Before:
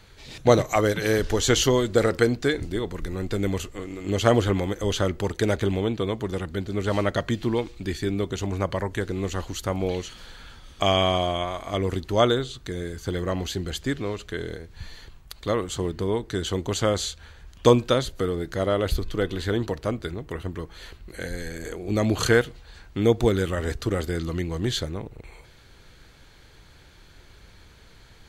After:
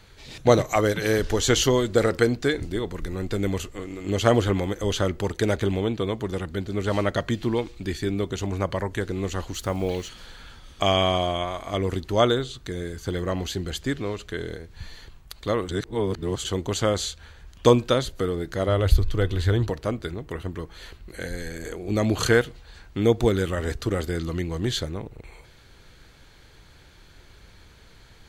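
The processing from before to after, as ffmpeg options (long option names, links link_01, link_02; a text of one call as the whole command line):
ffmpeg -i in.wav -filter_complex "[0:a]asettb=1/sr,asplit=3[link_01][link_02][link_03];[link_01]atrim=end=9.544[link_04];[link_02]atrim=start=9.54:end=10.09,asetpts=PTS-STARTPTS,afade=type=in:duration=0.004:curve=qsin,afade=type=out:start_time=0.546:duration=0.004:curve=qsin,acrusher=bits=7:mix=0:aa=0.5[link_05];[link_03]atrim=start=10.086[link_06];[link_04][link_05]acrossfade=duration=0.004:curve1=hsin:curve2=qsin[link_07];[link_07][link_06]acrossfade=duration=0.004:curve1=qsin:curve2=hsin,asettb=1/sr,asplit=3[link_08][link_09][link_10];[link_08]atrim=end=18.684[link_11];[link_09]atrim=start=18.68:end=19.7,asetpts=PTS-STARTPTS,afade=type=in:duration=0.004:curve=qsin,afade=type=out:start_time=1.016:duration=0.004:curve=qsin,lowshelf=frequency=140:width_type=q:width=1.5:gain=7.5[link_12];[link_10]atrim=start=19.696[link_13];[link_11][link_12]acrossfade=duration=0.004:curve1=hsin:curve2=qsin[link_14];[link_14][link_13]acrossfade=duration=0.004:curve1=qsin:curve2=hsin,asplit=3[link_15][link_16][link_17];[link_15]atrim=end=15.692[link_18];[link_16]atrim=start=15.688:end=16.452,asetpts=PTS-STARTPTS,areverse[link_19];[link_17]atrim=start=16.448[link_20];[link_18][link_19]acrossfade=duration=0.004:curve1=hsin:curve2=hsin[link_21];[link_21][link_20]acrossfade=duration=0.004:curve1=hsin:curve2=hsin" out.wav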